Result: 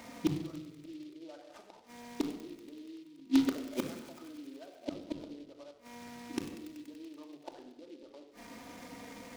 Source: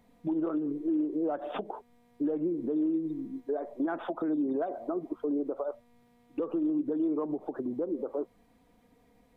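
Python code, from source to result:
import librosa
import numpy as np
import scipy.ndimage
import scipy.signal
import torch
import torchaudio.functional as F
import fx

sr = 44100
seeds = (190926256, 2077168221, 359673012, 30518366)

p1 = fx.highpass(x, sr, hz=380.0, slope=6)
p2 = fx.peak_eq(p1, sr, hz=2000.0, db=5.5, octaves=0.76)
p3 = fx.gate_flip(p2, sr, shuts_db=-34.0, range_db=-35)
p4 = (np.mod(10.0 ** (35.5 / 20.0) * p3 + 1.0, 2.0) - 1.0) / 10.0 ** (35.5 / 20.0)
p5 = p3 + F.gain(torch.from_numpy(p4), -4.0).numpy()
p6 = fx.sample_hold(p5, sr, seeds[0], rate_hz=2800.0, jitter_pct=0, at=(3.6, 4.09))
p7 = fx.echo_wet_highpass(p6, sr, ms=95, feedback_pct=81, hz=2400.0, wet_db=-9.5)
p8 = fx.room_shoebox(p7, sr, seeds[1], volume_m3=2400.0, walls='furnished', distance_m=2.6)
p9 = fx.noise_mod_delay(p8, sr, seeds[2], noise_hz=3300.0, depth_ms=0.056)
y = F.gain(torch.from_numpy(p9), 11.5).numpy()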